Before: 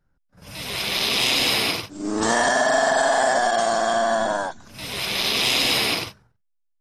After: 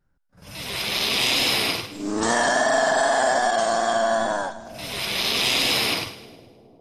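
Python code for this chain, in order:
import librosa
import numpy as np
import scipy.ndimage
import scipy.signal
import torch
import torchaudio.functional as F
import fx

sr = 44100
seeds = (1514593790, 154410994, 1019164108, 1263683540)

y = fx.wow_flutter(x, sr, seeds[0], rate_hz=2.1, depth_cents=24.0)
y = fx.echo_split(y, sr, split_hz=650.0, low_ms=405, high_ms=104, feedback_pct=52, wet_db=-15)
y = F.gain(torch.from_numpy(y), -1.0).numpy()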